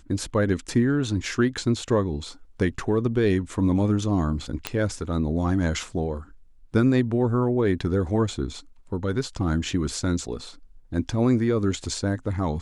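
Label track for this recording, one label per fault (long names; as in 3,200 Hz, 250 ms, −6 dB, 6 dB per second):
4.670000	4.670000	click −9 dBFS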